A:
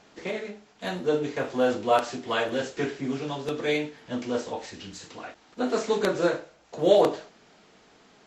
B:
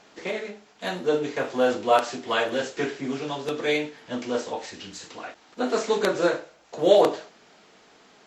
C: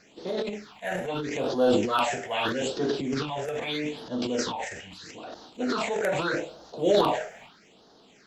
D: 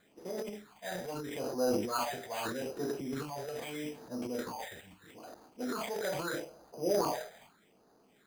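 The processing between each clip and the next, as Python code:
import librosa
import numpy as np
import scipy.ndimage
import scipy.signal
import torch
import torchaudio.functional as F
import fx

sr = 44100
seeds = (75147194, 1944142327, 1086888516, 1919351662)

y1 = fx.low_shelf(x, sr, hz=190.0, db=-9.0)
y1 = y1 * 10.0 ** (3.0 / 20.0)
y2 = fx.phaser_stages(y1, sr, stages=6, low_hz=280.0, high_hz=2300.0, hz=0.79, feedback_pct=25)
y2 = fx.transient(y2, sr, attack_db=-2, sustain_db=11)
y3 = np.repeat(scipy.signal.resample_poly(y2, 1, 8), 8)[:len(y2)]
y3 = y3 * 10.0 ** (-8.5 / 20.0)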